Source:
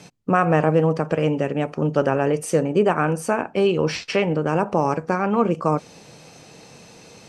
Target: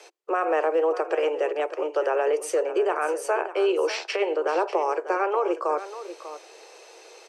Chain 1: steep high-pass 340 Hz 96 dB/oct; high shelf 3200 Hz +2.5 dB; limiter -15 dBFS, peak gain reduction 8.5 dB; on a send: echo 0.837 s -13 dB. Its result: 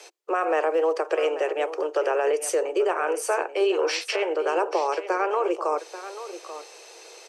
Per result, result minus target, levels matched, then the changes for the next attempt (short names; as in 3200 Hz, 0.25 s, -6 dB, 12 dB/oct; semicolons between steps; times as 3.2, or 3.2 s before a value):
echo 0.243 s late; 8000 Hz band +5.5 dB
change: echo 0.594 s -13 dB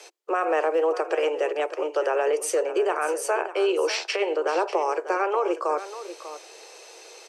8000 Hz band +5.5 dB
change: high shelf 3200 Hz -4 dB